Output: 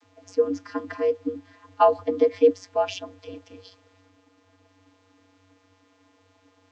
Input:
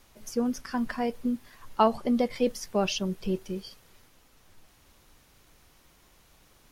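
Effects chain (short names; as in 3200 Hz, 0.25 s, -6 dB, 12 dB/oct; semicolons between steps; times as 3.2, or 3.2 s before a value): vocoder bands 32, square 94.4 Hz; gain +5.5 dB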